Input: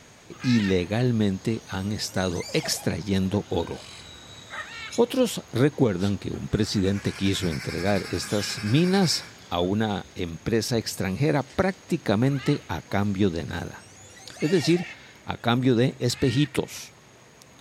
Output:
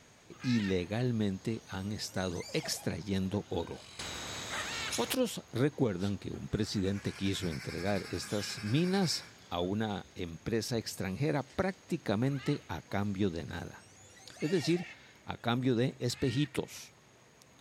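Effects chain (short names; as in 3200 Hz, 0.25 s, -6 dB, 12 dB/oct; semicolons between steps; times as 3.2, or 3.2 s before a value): 3.99–5.15 spectral compressor 2:1; gain -9 dB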